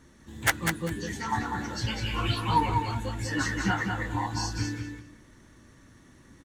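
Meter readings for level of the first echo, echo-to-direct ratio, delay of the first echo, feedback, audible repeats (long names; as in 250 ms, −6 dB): −5.0 dB, −5.0 dB, 198 ms, 20%, 3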